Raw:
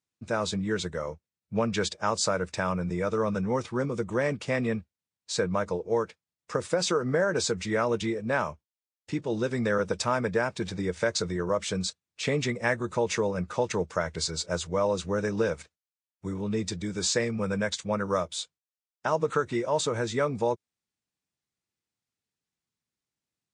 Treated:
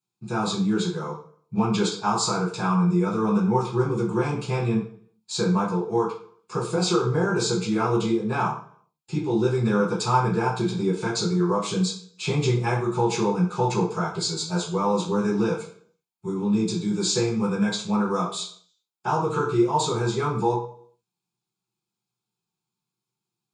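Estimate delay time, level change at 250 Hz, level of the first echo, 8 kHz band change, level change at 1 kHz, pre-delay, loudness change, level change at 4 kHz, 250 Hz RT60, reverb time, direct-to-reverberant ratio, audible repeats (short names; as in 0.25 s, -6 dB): none, +8.0 dB, none, +2.0 dB, +6.5 dB, 3 ms, +4.5 dB, +3.5 dB, 0.60 s, 0.55 s, -7.0 dB, none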